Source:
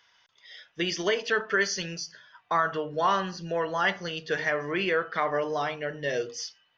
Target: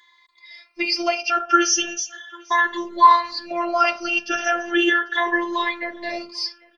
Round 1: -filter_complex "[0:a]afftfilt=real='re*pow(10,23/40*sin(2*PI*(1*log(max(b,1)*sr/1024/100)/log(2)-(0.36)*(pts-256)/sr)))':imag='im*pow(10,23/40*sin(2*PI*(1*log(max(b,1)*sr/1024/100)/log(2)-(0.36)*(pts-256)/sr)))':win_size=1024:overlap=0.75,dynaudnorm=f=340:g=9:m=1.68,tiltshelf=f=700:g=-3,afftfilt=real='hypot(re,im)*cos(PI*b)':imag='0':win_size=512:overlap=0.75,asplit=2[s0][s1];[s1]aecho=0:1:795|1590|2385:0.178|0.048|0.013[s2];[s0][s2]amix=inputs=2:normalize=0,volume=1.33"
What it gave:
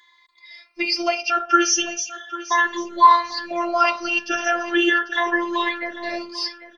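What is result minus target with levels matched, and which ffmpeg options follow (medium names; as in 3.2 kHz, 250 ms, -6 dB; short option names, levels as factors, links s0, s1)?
echo-to-direct +10.5 dB
-filter_complex "[0:a]afftfilt=real='re*pow(10,23/40*sin(2*PI*(1*log(max(b,1)*sr/1024/100)/log(2)-(0.36)*(pts-256)/sr)))':imag='im*pow(10,23/40*sin(2*PI*(1*log(max(b,1)*sr/1024/100)/log(2)-(0.36)*(pts-256)/sr)))':win_size=1024:overlap=0.75,dynaudnorm=f=340:g=9:m=1.68,tiltshelf=f=700:g=-3,afftfilt=real='hypot(re,im)*cos(PI*b)':imag='0':win_size=512:overlap=0.75,asplit=2[s0][s1];[s1]aecho=0:1:795|1590:0.0531|0.0143[s2];[s0][s2]amix=inputs=2:normalize=0,volume=1.33"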